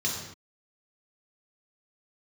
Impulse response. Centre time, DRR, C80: 50 ms, -3.0 dB, 5.0 dB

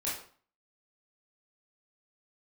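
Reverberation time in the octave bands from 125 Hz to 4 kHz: 0.50, 0.50, 0.45, 0.50, 0.40, 0.40 s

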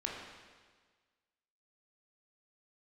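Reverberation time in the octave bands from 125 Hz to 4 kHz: 1.5, 1.5, 1.5, 1.5, 1.5, 1.5 s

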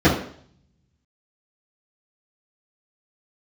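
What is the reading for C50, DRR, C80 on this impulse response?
5.5 dB, -12.5 dB, 10.0 dB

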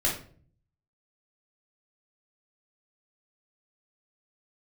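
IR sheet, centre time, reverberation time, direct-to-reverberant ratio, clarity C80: 29 ms, 0.50 s, -4.0 dB, 11.5 dB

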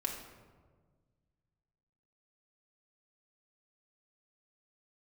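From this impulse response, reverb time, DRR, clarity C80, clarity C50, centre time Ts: 1.5 s, -0.5 dB, 7.0 dB, 5.0 dB, 38 ms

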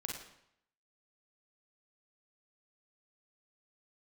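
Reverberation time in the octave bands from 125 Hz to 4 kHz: 0.80, 0.70, 0.70, 0.75, 0.70, 0.65 s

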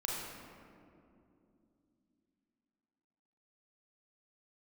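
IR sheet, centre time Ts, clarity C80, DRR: 0.118 s, 1.0 dB, -3.5 dB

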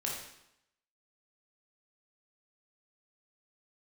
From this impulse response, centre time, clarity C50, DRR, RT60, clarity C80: 51 ms, 2.0 dB, -3.5 dB, 0.80 s, 5.0 dB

